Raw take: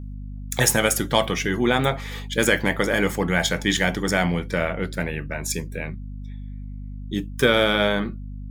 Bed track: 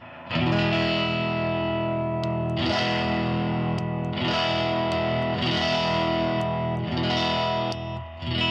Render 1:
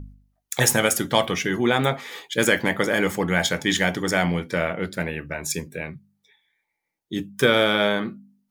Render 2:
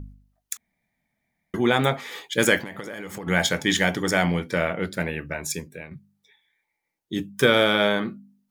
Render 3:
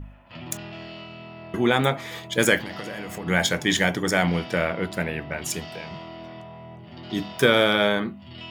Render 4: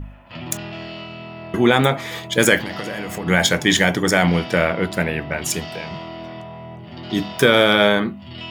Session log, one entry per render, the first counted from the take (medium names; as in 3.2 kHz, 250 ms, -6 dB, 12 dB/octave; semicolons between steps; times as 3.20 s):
de-hum 50 Hz, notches 5
0.57–1.54 s: room tone; 2.61–3.27 s: compression 16:1, threshold -30 dBFS; 5.32–5.91 s: fade out, to -10 dB
add bed track -15.5 dB
trim +6 dB; peak limiter -1 dBFS, peak gain reduction 3 dB